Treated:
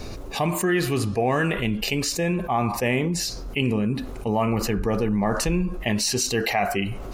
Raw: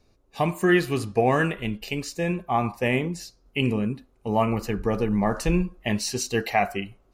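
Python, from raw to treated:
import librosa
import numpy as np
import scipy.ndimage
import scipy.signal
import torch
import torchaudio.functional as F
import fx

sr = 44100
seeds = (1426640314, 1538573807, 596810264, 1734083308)

y = fx.env_flatten(x, sr, amount_pct=70)
y = F.gain(torch.from_numpy(y), -4.0).numpy()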